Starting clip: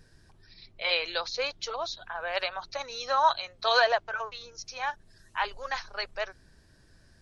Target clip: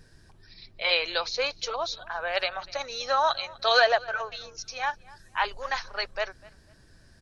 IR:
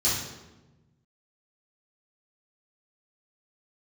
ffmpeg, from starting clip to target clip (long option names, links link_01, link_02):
-filter_complex "[0:a]asettb=1/sr,asplit=3[link_01][link_02][link_03];[link_01]atrim=end=2.284[link_04];[link_02]atrim=start=2.28:end=4.84,asetpts=PTS-STARTPTS,afade=type=in:duration=0.004:curve=qsin,afade=type=out:start_time=2.556:duration=0.004:curve=qsin,bandreject=frequency=1000:width=5.4[link_05];[link_03]atrim=start=4.836[link_06];[link_04][link_05]acrossfade=duration=0.004:curve1=hsin:curve2=qsin[link_07];[link_07][link_06]acrossfade=duration=0.004:curve1=qsin:curve2=hsin,asplit=2[link_08][link_09];[link_09]adelay=248,lowpass=frequency=4400:poles=1,volume=-22dB,asplit=2[link_10][link_11];[link_11]adelay=248,lowpass=frequency=4400:poles=1,volume=0.28[link_12];[link_08][link_10][link_12]amix=inputs=3:normalize=0,volume=3dB"